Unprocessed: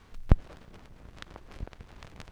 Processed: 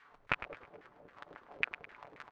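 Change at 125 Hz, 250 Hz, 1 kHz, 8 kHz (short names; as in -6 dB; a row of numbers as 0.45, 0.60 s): -24.5 dB, -17.5 dB, +1.0 dB, n/a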